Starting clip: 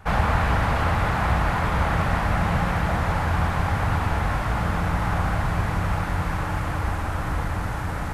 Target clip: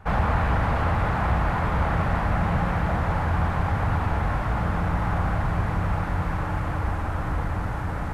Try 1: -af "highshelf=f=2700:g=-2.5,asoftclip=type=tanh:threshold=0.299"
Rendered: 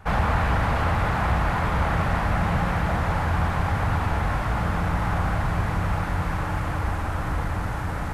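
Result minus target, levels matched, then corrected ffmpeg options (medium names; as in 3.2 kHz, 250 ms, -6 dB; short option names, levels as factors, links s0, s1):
4 kHz band +4.0 dB
-af "highshelf=f=2700:g=-10,asoftclip=type=tanh:threshold=0.299"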